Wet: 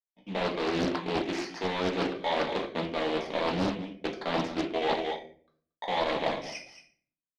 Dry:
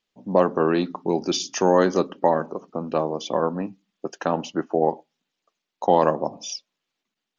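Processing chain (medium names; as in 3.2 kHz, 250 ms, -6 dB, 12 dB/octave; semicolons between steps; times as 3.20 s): bit-reversed sample order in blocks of 16 samples; bass shelf 390 Hz -11 dB; gate with hold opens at -51 dBFS; waveshaping leveller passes 2; delay 229 ms -17.5 dB; reverse; compression 12:1, threshold -27 dBFS, peak gain reduction 16.5 dB; reverse; low-pass 4.2 kHz 24 dB/octave; reverberation RT60 0.50 s, pre-delay 3 ms, DRR -0.5 dB; loudspeaker Doppler distortion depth 0.84 ms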